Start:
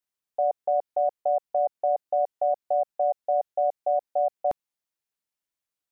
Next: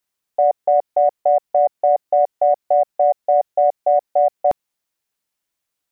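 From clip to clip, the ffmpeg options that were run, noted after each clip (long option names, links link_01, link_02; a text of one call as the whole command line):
ffmpeg -i in.wav -af "acontrast=38,volume=3.5dB" out.wav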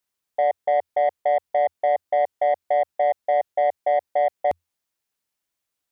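ffmpeg -i in.wav -af "equalizer=frequency=85:width_type=o:width=0.21:gain=4,asoftclip=type=tanh:threshold=-11dB,volume=-2.5dB" out.wav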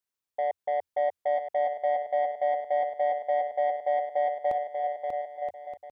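ffmpeg -i in.wav -af "aecho=1:1:590|973.5|1223|1385|1490:0.631|0.398|0.251|0.158|0.1,volume=-8dB" out.wav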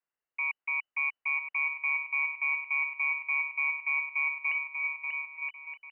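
ffmpeg -i in.wav -af "equalizer=frequency=125:width_type=o:width=1:gain=-10,equalizer=frequency=250:width_type=o:width=1:gain=6,equalizer=frequency=500:width_type=o:width=1:gain=-11,lowpass=frequency=2600:width_type=q:width=0.5098,lowpass=frequency=2600:width_type=q:width=0.6013,lowpass=frequency=2600:width_type=q:width=0.9,lowpass=frequency=2600:width_type=q:width=2.563,afreqshift=-3000,volume=2.5dB" out.wav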